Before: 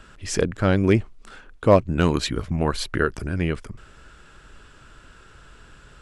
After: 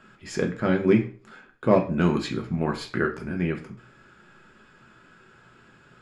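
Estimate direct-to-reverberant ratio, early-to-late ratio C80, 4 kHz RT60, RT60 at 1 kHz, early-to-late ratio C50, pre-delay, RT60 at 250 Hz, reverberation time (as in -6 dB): 1.0 dB, 16.0 dB, 0.35 s, 0.35 s, 12.0 dB, 3 ms, 0.45 s, 0.40 s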